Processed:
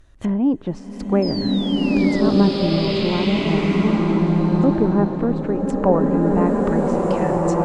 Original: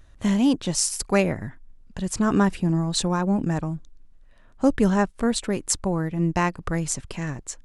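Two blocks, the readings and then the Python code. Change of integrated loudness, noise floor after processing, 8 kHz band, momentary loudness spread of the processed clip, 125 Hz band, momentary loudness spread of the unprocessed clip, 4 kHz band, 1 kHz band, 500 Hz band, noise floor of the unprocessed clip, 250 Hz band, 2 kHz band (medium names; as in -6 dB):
+5.0 dB, -38 dBFS, under -15 dB, 5 LU, +5.5 dB, 11 LU, +3.5 dB, +4.0 dB, +8.0 dB, -51 dBFS, +6.5 dB, +1.0 dB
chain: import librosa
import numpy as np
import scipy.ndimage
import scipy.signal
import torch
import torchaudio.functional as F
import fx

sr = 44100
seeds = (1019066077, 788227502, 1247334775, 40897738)

y = fx.env_lowpass_down(x, sr, base_hz=1000.0, full_db=-20.0)
y = fx.spec_box(y, sr, start_s=5.75, length_s=0.25, low_hz=420.0, high_hz=3100.0, gain_db=12)
y = fx.peak_eq(y, sr, hz=360.0, db=4.5, octaves=0.57)
y = fx.spec_paint(y, sr, seeds[0], shape='fall', start_s=1.22, length_s=0.99, low_hz=1900.0, high_hz=5300.0, level_db=-33.0)
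y = fx.rev_bloom(y, sr, seeds[1], attack_ms=1620, drr_db=-3.5)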